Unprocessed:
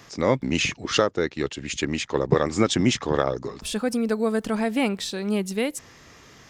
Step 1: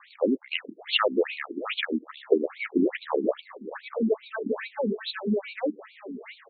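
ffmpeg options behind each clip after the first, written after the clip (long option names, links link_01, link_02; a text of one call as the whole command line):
ffmpeg -i in.wav -filter_complex "[0:a]asplit=2[link_01][link_02];[link_02]adelay=658,lowpass=frequency=1700:poles=1,volume=-8dB,asplit=2[link_03][link_04];[link_04]adelay=658,lowpass=frequency=1700:poles=1,volume=0.4,asplit=2[link_05][link_06];[link_06]adelay=658,lowpass=frequency=1700:poles=1,volume=0.4,asplit=2[link_07][link_08];[link_08]adelay=658,lowpass=frequency=1700:poles=1,volume=0.4,asplit=2[link_09][link_10];[link_10]adelay=658,lowpass=frequency=1700:poles=1,volume=0.4[link_11];[link_01][link_03][link_05][link_07][link_09][link_11]amix=inputs=6:normalize=0,afftfilt=real='re*between(b*sr/1024,270*pow(3200/270,0.5+0.5*sin(2*PI*2.4*pts/sr))/1.41,270*pow(3200/270,0.5+0.5*sin(2*PI*2.4*pts/sr))*1.41)':imag='im*between(b*sr/1024,270*pow(3200/270,0.5+0.5*sin(2*PI*2.4*pts/sr))/1.41,270*pow(3200/270,0.5+0.5*sin(2*PI*2.4*pts/sr))*1.41)':win_size=1024:overlap=0.75,volume=3dB" out.wav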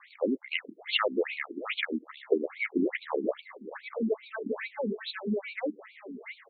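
ffmpeg -i in.wav -af "equalizer=frequency=2100:width_type=o:width=0.27:gain=8.5,volume=-4.5dB" out.wav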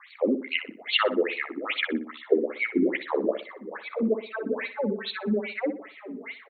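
ffmpeg -i in.wav -filter_complex "[0:a]asplit=2[link_01][link_02];[link_02]adelay=61,lowpass=frequency=2600:poles=1,volume=-9.5dB,asplit=2[link_03][link_04];[link_04]adelay=61,lowpass=frequency=2600:poles=1,volume=0.36,asplit=2[link_05][link_06];[link_06]adelay=61,lowpass=frequency=2600:poles=1,volume=0.36,asplit=2[link_07][link_08];[link_08]adelay=61,lowpass=frequency=2600:poles=1,volume=0.36[link_09];[link_01][link_03][link_05][link_07][link_09]amix=inputs=5:normalize=0,volume=4dB" out.wav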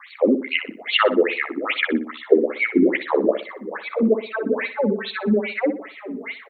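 ffmpeg -i in.wav -filter_complex "[0:a]acrossover=split=3400[link_01][link_02];[link_02]acompressor=threshold=-47dB:ratio=4:attack=1:release=60[link_03];[link_01][link_03]amix=inputs=2:normalize=0,volume=7dB" out.wav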